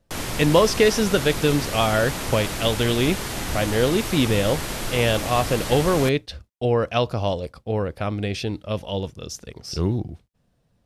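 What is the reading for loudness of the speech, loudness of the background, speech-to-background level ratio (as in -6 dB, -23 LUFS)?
-22.5 LUFS, -28.5 LUFS, 6.0 dB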